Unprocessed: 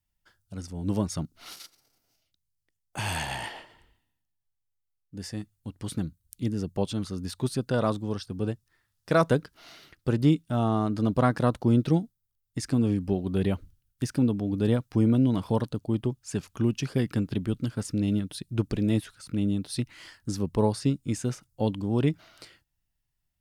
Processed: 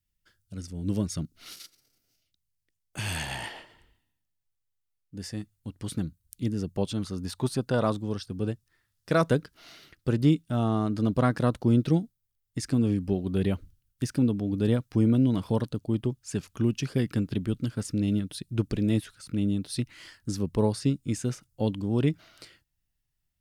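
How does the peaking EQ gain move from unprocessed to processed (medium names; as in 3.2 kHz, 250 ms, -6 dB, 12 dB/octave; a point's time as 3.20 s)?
peaking EQ 860 Hz 1 oct
2.99 s -11.5 dB
3.39 s -3 dB
6.88 s -3 dB
7.49 s +6 dB
8.12 s -4 dB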